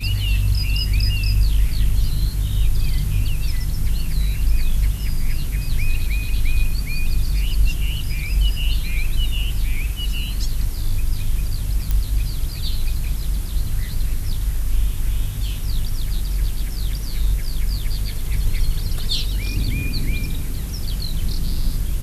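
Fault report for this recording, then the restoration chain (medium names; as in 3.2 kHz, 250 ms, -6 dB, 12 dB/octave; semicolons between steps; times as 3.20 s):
11.91 s: pop -9 dBFS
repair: de-click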